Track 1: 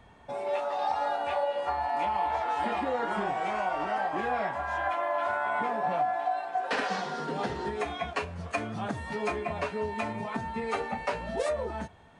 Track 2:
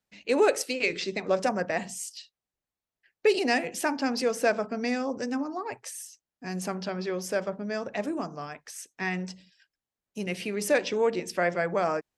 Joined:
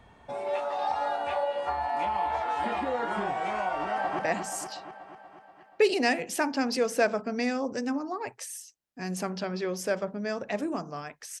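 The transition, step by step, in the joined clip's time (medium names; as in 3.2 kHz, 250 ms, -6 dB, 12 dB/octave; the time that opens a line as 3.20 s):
track 1
3.79–4.19 s: echo throw 240 ms, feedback 65%, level -5.5 dB
4.19 s: go over to track 2 from 1.64 s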